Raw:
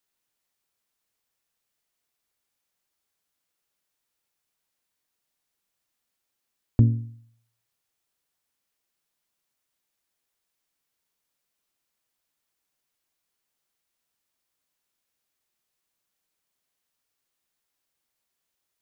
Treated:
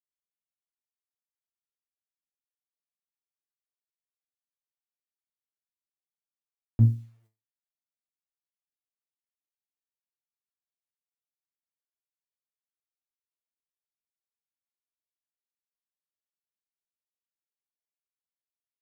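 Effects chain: bit-crush 9-bit; resonator 110 Hz, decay 0.27 s, harmonics all, mix 90%; upward expander 1.5:1, over -46 dBFS; gain +3.5 dB

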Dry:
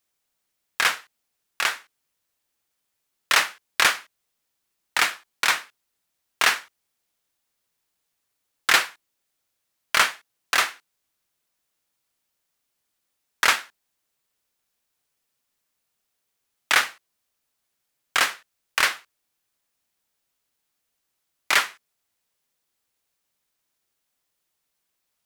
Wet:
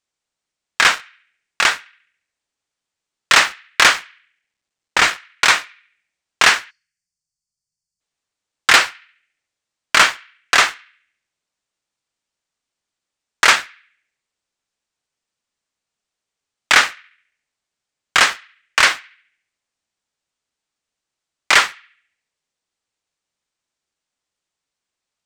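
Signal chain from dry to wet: 3.94–5.1 CVSD 64 kbps; steep low-pass 8600 Hz 36 dB/oct; sample leveller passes 2; on a send: narrowing echo 70 ms, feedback 51%, band-pass 2200 Hz, level -22.5 dB; 6.7–8.01 on the sum: spectral gain 210–4300 Hz -22 dB; gain +2 dB

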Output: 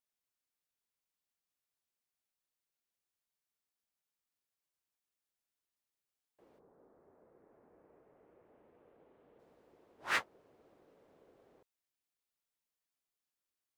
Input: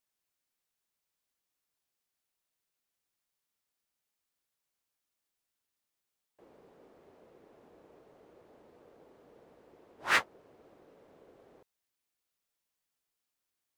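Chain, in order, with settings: 6.58–9.38 LPF 1400 Hz -> 3500 Hz 24 dB/oct; gain -6.5 dB

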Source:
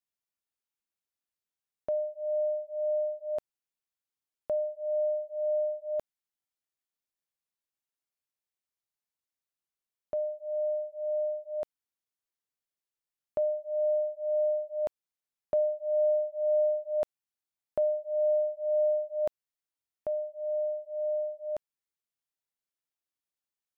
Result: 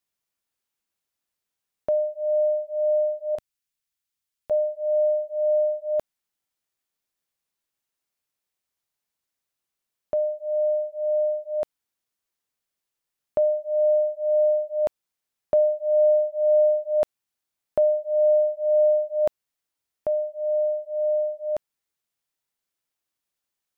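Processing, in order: 3.35–4.51 bell 510 Hz -10.5 dB 2.7 oct; gain +7.5 dB

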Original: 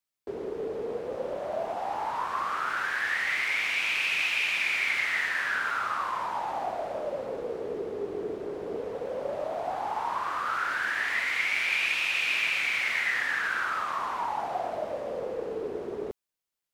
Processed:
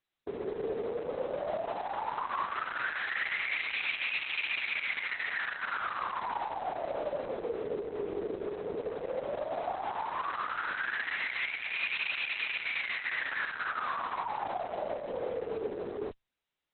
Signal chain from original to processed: limiter -25.5 dBFS, peak gain reduction 10.5 dB; Opus 6 kbps 48000 Hz

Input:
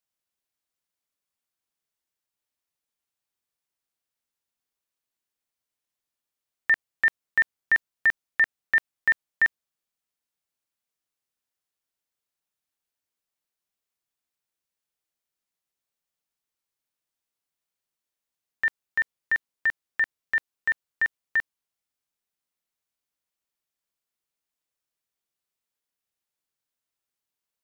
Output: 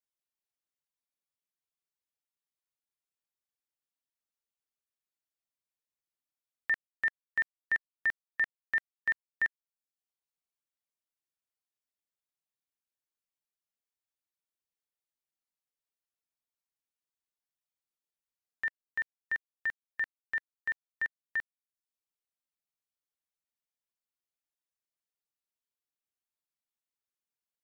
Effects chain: reverb removal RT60 0.57 s; gain -8.5 dB

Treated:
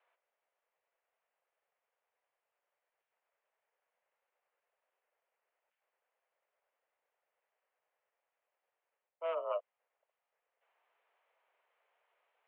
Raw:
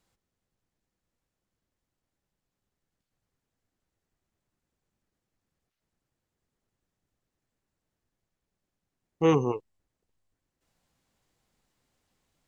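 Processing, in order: reverse; compressor 16:1, threshold -33 dBFS, peak gain reduction 16.5 dB; reverse; mistuned SSB +170 Hz 350–2700 Hz; gain +2.5 dB

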